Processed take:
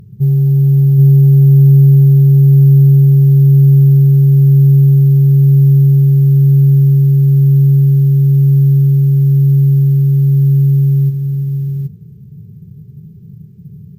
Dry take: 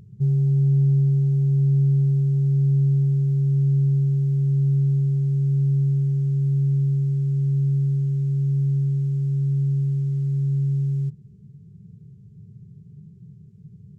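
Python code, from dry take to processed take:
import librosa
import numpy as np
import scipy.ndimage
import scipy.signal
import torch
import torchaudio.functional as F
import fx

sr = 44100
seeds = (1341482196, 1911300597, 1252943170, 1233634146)

p1 = x + fx.echo_single(x, sr, ms=777, db=-3.5, dry=0)
p2 = np.repeat(scipy.signal.resample_poly(p1, 1, 3), 3)[:len(p1)]
y = F.gain(torch.from_numpy(p2), 9.0).numpy()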